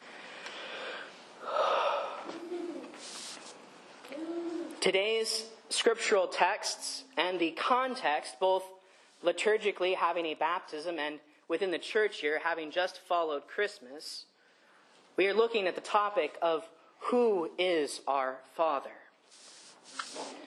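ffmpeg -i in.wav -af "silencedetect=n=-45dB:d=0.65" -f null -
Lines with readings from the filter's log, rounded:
silence_start: 14.22
silence_end: 15.18 | silence_duration: 0.96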